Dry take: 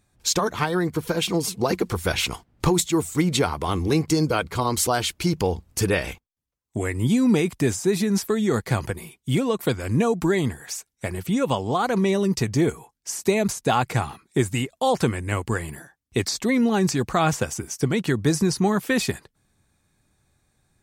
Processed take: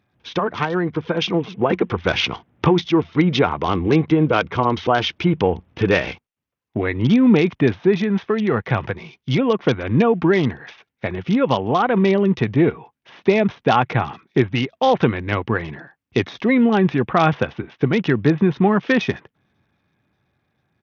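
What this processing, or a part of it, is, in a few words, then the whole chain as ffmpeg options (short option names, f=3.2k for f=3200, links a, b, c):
Bluetooth headset: -filter_complex "[0:a]lowpass=9.2k,asettb=1/sr,asplit=3[a][b][c];[a]atrim=end=7.954[d];[b]atrim=start=7.95:end=9.39,asetpts=PTS-STARTPTS,afade=t=in:d=0.004:c=qsin,afade=t=out:st=1.436:d=0.004:c=qsin,equalizer=f=280:t=o:w=1.3:g=-4.5[e];[c]atrim=start=9.386[f];[d][e]acrossfade=d=0.004:c1=hsin:c2=qsin[g];[g][f]acrossfade=d=0.004:c1=qsin:c2=hsin,highpass=110,dynaudnorm=f=130:g=21:m=4dB,aresample=8000,aresample=44100,volume=2dB" -ar 48000 -c:a sbc -b:a 64k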